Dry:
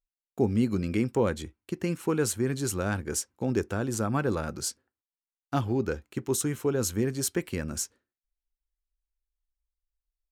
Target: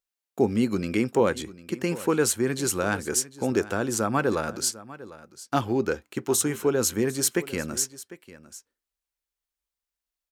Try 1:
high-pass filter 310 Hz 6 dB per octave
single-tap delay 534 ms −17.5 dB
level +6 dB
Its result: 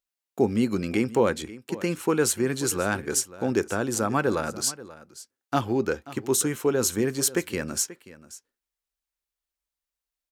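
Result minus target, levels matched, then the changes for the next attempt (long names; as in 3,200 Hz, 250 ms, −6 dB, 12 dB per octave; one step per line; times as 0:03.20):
echo 216 ms early
change: single-tap delay 750 ms −17.5 dB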